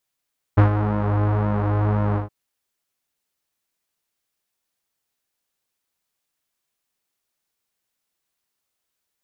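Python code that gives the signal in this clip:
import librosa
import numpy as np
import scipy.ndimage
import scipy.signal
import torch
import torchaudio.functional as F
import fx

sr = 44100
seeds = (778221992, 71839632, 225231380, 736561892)

y = fx.sub_patch_pwm(sr, seeds[0], note=44, wave2='saw', interval_st=0, detune_cents=25, level2_db=-9.0, sub_db=-15.0, noise_db=-30.0, kind='lowpass', cutoff_hz=1000.0, q=1.4, env_oct=0.5, env_decay_s=0.27, env_sustain_pct=40, attack_ms=15.0, decay_s=0.11, sustain_db=-8.5, release_s=0.13, note_s=1.59, lfo_hz=1.9, width_pct=41, width_swing_pct=15)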